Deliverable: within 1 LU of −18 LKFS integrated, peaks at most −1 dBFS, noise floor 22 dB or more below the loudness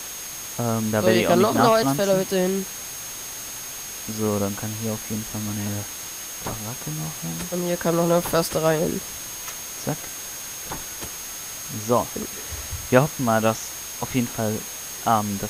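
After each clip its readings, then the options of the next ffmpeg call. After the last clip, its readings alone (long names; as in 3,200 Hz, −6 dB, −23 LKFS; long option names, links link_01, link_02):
interfering tone 6,500 Hz; level of the tone −36 dBFS; background noise floor −35 dBFS; target noise floor −47 dBFS; integrated loudness −24.5 LKFS; sample peak −1.5 dBFS; target loudness −18.0 LKFS
→ -af "bandreject=frequency=6500:width=30"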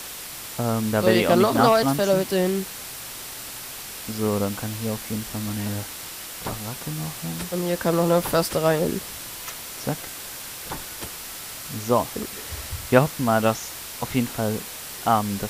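interfering tone none found; background noise floor −37 dBFS; target noise floor −47 dBFS
→ -af "afftdn=noise_reduction=10:noise_floor=-37"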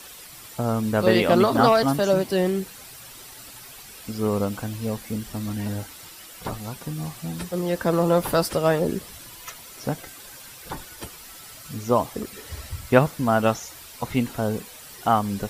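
background noise floor −43 dBFS; target noise floor −46 dBFS
→ -af "afftdn=noise_reduction=6:noise_floor=-43"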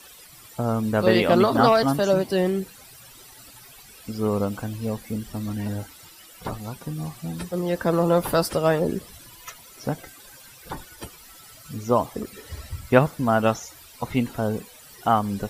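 background noise floor −48 dBFS; integrated loudness −23.5 LKFS; sample peak −1.5 dBFS; target loudness −18.0 LKFS
→ -af "volume=5.5dB,alimiter=limit=-1dB:level=0:latency=1"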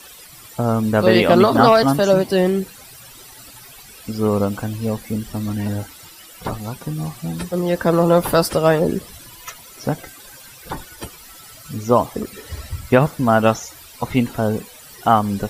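integrated loudness −18.5 LKFS; sample peak −1.0 dBFS; background noise floor −42 dBFS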